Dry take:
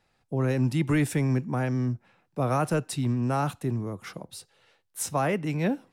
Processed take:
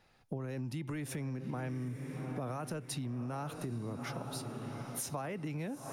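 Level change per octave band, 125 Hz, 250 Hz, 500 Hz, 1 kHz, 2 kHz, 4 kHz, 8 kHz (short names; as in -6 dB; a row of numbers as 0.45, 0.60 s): -11.5, -11.5, -12.0, -12.0, -12.0, -6.5, -7.0 dB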